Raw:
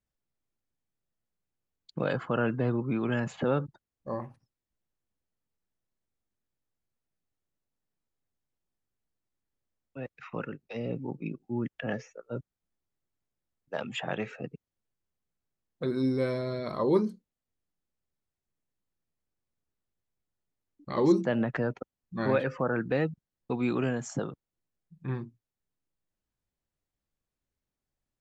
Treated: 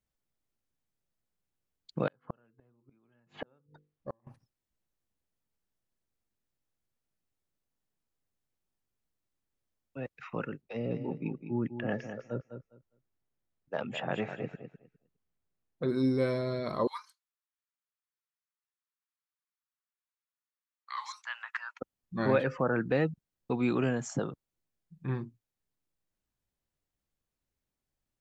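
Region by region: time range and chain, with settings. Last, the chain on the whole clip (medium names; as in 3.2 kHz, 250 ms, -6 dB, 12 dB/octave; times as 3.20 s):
2.07–4.27 s: low-pass 3.7 kHz + hum notches 50/100/150/200/250/300/350/400/450/500 Hz + inverted gate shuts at -24 dBFS, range -40 dB
10.61–15.89 s: treble shelf 4.2 kHz -11 dB + feedback delay 204 ms, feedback 18%, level -9 dB
16.87–21.80 s: steep high-pass 1 kHz 48 dB/octave + tape noise reduction on one side only decoder only
whole clip: none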